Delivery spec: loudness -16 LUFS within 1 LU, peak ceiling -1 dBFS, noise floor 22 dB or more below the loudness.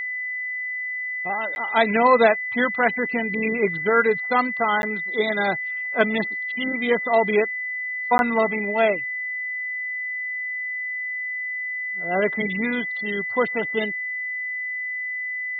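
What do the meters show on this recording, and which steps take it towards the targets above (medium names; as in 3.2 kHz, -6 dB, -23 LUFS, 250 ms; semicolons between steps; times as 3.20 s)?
dropouts 3; longest dropout 11 ms; steady tone 2 kHz; tone level -26 dBFS; loudness -23.0 LUFS; peak level -4.5 dBFS; loudness target -16.0 LUFS
-> interpolate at 1.55/4.82/8.18 s, 11 ms; band-stop 2 kHz, Q 30; trim +7 dB; peak limiter -1 dBFS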